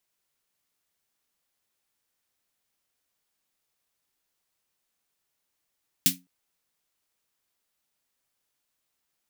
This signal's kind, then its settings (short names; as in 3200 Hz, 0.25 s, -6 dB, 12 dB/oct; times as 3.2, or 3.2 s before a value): snare drum length 0.21 s, tones 180 Hz, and 270 Hz, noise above 2200 Hz, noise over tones 11.5 dB, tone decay 0.27 s, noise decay 0.16 s